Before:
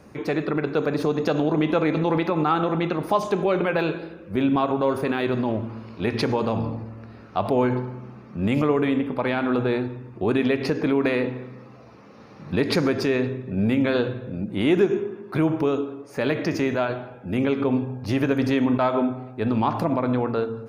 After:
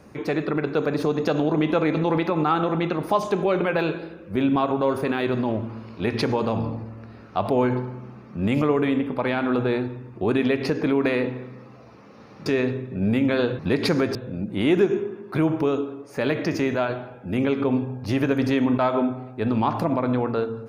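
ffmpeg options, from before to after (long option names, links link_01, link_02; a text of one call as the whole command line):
ffmpeg -i in.wav -filter_complex "[0:a]asplit=4[link_01][link_02][link_03][link_04];[link_01]atrim=end=12.462[link_05];[link_02]atrim=start=13.018:end=14.152[link_06];[link_03]atrim=start=12.458:end=13.022[link_07];[link_04]atrim=start=14.148[link_08];[link_05][link_06]acrossfade=duration=0.004:curve1=hsin:curve2=hsin[link_09];[link_09][link_07]acrossfade=duration=0.004:curve1=hsin:curve2=hsin[link_10];[link_10][link_08]acrossfade=duration=0.004:curve1=hsin:curve2=hsin" out.wav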